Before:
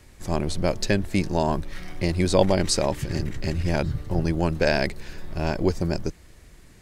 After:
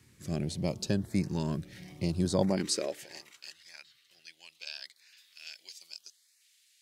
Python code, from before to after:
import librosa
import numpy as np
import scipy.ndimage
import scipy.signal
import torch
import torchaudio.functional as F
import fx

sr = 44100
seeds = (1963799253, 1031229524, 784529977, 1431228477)

y = fx.peak_eq(x, sr, hz=780.0, db=-4.5, octaves=2.9)
y = fx.filter_lfo_notch(y, sr, shape='saw_up', hz=0.78, low_hz=590.0, high_hz=3500.0, q=1.4)
y = fx.bass_treble(y, sr, bass_db=6, treble_db=-7, at=(3.52, 5.17))
y = fx.filter_sweep_highpass(y, sr, from_hz=130.0, to_hz=3200.0, start_s=2.38, end_s=3.66, q=1.6)
y = y * librosa.db_to_amplitude(-6.5)